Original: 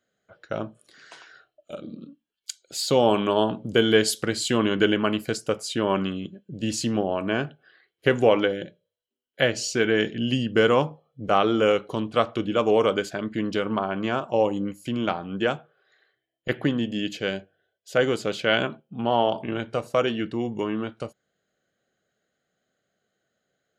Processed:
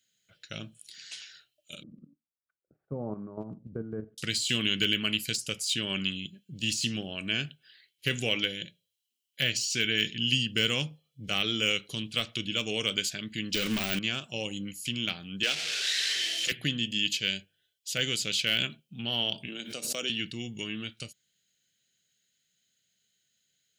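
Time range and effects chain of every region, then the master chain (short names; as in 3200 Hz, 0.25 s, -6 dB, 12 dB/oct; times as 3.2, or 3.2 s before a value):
1.83–4.18 steep low-pass 1200 Hz 48 dB/oct + level quantiser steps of 10 dB
13.54–13.99 low shelf 150 Hz -8.5 dB + sample leveller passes 3
15.43–16.52 zero-crossing step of -24.5 dBFS + LPF 8500 Hz + three-band isolator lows -23 dB, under 290 Hz, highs -12 dB, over 6400 Hz
19.48–20.1 HPF 220 Hz 24 dB/oct + bell 2200 Hz -8 dB 1.5 oct + backwards sustainer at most 100 dB/s
whole clip: low shelf 350 Hz -9 dB; de-esser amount 80%; EQ curve 160 Hz 0 dB, 380 Hz -14 dB, 1000 Hz -24 dB, 2600 Hz +4 dB, 6300 Hz +7 dB; gain +3 dB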